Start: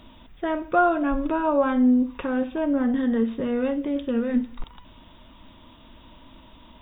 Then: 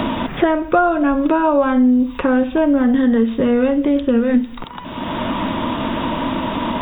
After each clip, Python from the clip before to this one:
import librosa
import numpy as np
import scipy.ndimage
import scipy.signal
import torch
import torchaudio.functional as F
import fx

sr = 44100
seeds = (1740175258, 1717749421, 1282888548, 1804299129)

y = fx.band_squash(x, sr, depth_pct=100)
y = y * 10.0 ** (8.0 / 20.0)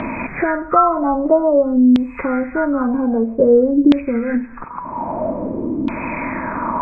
y = fx.freq_compress(x, sr, knee_hz=1200.0, ratio=1.5)
y = fx.filter_lfo_lowpass(y, sr, shape='saw_down', hz=0.51, low_hz=300.0, high_hz=3400.0, q=4.6)
y = y * 10.0 ** (-4.5 / 20.0)